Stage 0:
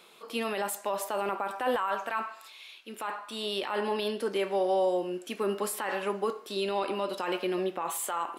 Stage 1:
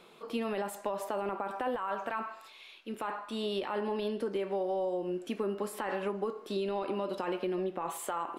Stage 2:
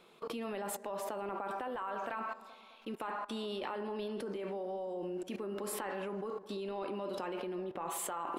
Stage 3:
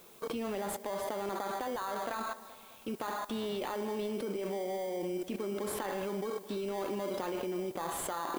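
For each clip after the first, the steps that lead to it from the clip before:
spectral tilt −2.5 dB per octave; downward compressor, threshold −30 dBFS, peak gain reduction 9 dB
output level in coarse steps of 23 dB; bucket-brigade delay 211 ms, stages 2,048, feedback 57%, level −16 dB; level +7 dB
in parallel at −5 dB: sample-rate reduction 2,700 Hz, jitter 0%; on the sum: background noise blue −59 dBFS

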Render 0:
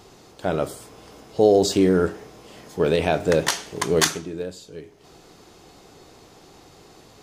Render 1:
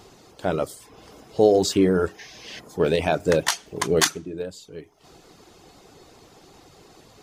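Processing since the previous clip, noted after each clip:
gain on a spectral selection 0:02.19–0:02.59, 1,500–6,700 Hz +12 dB
reverb reduction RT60 0.56 s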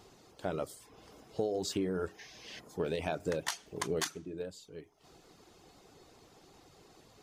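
downward compressor 5 to 1, threshold −21 dBFS, peak gain reduction 9.5 dB
level −9 dB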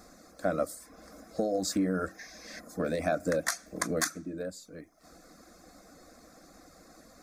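phaser with its sweep stopped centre 600 Hz, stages 8
level +8.5 dB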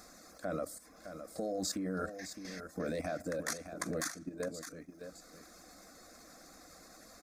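output level in coarse steps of 12 dB
single-tap delay 612 ms −10 dB
one half of a high-frequency compander encoder only

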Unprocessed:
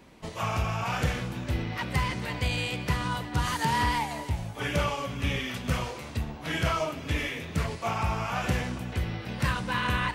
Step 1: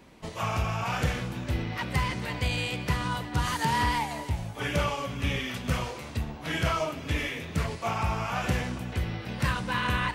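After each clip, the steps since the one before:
no processing that can be heard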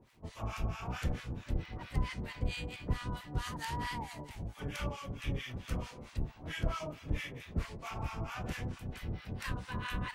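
sub-octave generator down 1 octave, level +3 dB
surface crackle 180 per second −50 dBFS
two-band tremolo in antiphase 4.5 Hz, depth 100%, crossover 940 Hz
level −7 dB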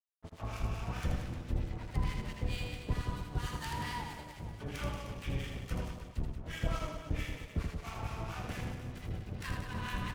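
dead-zone distortion −48 dBFS
on a send: reverse bouncing-ball delay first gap 80 ms, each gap 1.25×, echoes 5

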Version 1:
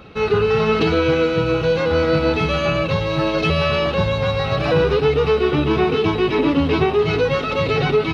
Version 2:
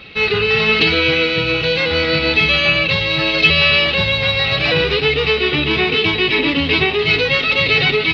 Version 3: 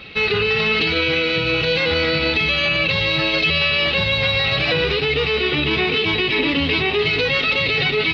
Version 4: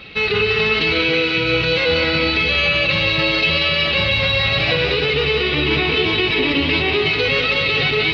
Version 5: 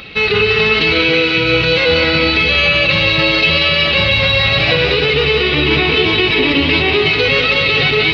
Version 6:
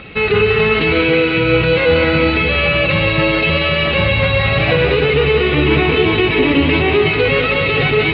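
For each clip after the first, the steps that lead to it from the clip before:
flat-topped bell 3,000 Hz +14.5 dB; level −2 dB
brickwall limiter −10 dBFS, peak gain reduction 8.5 dB
echo with a time of its own for lows and highs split 320 Hz, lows 112 ms, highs 186 ms, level −6 dB
upward compression, threshold −41 dBFS; level +4.5 dB
high-frequency loss of the air 470 metres; level +3 dB

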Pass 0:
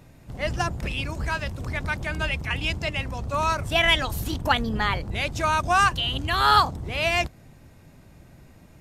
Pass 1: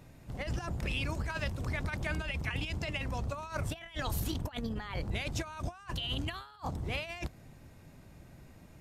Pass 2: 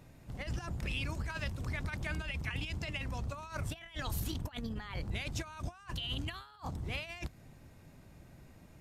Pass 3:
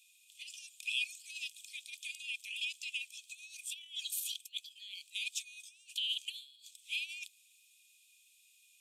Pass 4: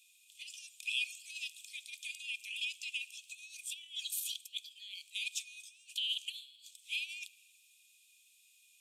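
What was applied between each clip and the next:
compressor whose output falls as the input rises −28 dBFS, ratio −0.5; level −7.5 dB
dynamic equaliser 570 Hz, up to −4 dB, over −51 dBFS, Q 0.74; level −2 dB
Chebyshev high-pass with heavy ripple 2,400 Hz, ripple 9 dB; level +10 dB
convolution reverb RT60 1.7 s, pre-delay 9 ms, DRR 17.5 dB

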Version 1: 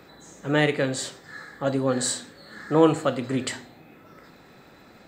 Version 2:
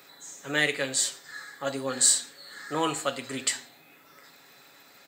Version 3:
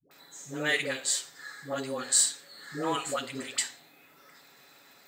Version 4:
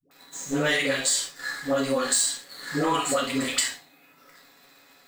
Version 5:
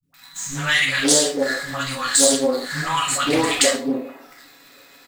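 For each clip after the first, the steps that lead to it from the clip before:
spectral tilt +4 dB per octave; comb filter 7.2 ms, depth 45%; level −5 dB
all-pass dispersion highs, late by 112 ms, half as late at 460 Hz; level −2.5 dB
leveller curve on the samples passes 2; convolution reverb, pre-delay 4 ms, DRR −1 dB; downward compressor 4 to 1, threshold −23 dBFS, peak gain reduction 9.5 dB; level +1.5 dB
three-band delay without the direct sound lows, highs, mids 30/520 ms, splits 190/860 Hz; highs frequency-modulated by the lows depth 0.2 ms; level +7.5 dB

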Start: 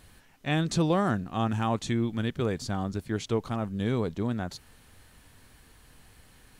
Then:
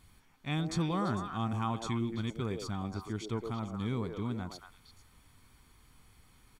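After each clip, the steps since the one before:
comb filter 0.9 ms, depth 49%
echo through a band-pass that steps 113 ms, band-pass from 470 Hz, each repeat 1.4 octaves, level −1 dB
level −8 dB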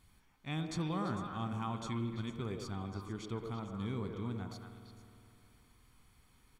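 spring reverb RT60 2.8 s, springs 51 ms, chirp 25 ms, DRR 8.5 dB
level −5 dB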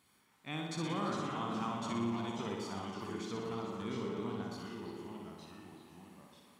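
delay with pitch and tempo change per echo 319 ms, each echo −2 semitones, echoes 2, each echo −6 dB
high-pass filter 210 Hz 12 dB per octave
on a send: flutter between parallel walls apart 10.3 metres, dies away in 0.86 s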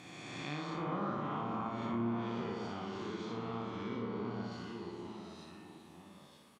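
peak hold with a rise ahead of every peak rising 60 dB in 2.25 s
treble cut that deepens with the level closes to 1,700 Hz, closed at −29.5 dBFS
double-tracking delay 34 ms −4.5 dB
level −4.5 dB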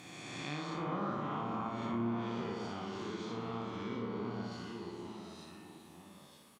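high-shelf EQ 7,700 Hz +9 dB

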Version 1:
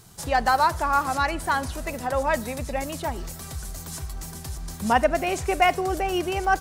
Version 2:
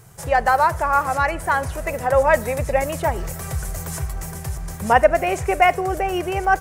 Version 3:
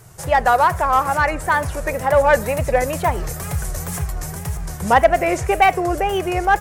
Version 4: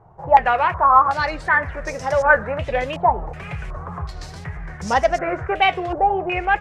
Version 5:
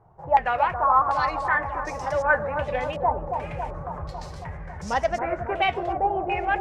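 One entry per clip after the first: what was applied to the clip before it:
octave-band graphic EQ 125/250/500/2,000/4,000 Hz +8/−9/+7/+5/−9 dB; speech leveller within 5 dB 2 s; level +1.5 dB
tape wow and flutter 130 cents; in parallel at −6 dB: gain into a clipping stage and back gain 13.5 dB; on the sum: level −1 dB
flanger 0.61 Hz, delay 3.5 ms, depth 7.8 ms, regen −63%; low-pass on a step sequencer 2.7 Hz 870–5,600 Hz; level −1 dB
bucket-brigade delay 275 ms, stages 2,048, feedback 70%, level −6 dB; level −6.5 dB

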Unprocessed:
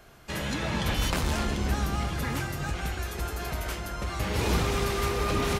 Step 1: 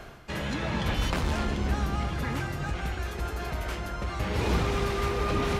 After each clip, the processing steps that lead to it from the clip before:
high-shelf EQ 6,000 Hz −11.5 dB
reversed playback
upward compression, threshold −29 dBFS
reversed playback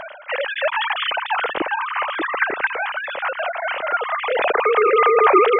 three sine waves on the formant tracks
level +9 dB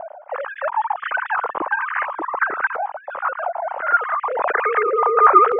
low-pass on a step sequencer 2.9 Hz 760–1,700 Hz
level −6 dB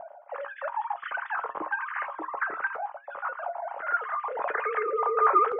tuned comb filter 63 Hz, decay 0.17 s, harmonics odd, mix 60%
level −5 dB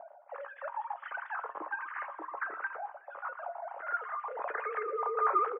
band-pass filter 290–2,600 Hz
repeating echo 123 ms, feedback 58%, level −20 dB
level −6.5 dB

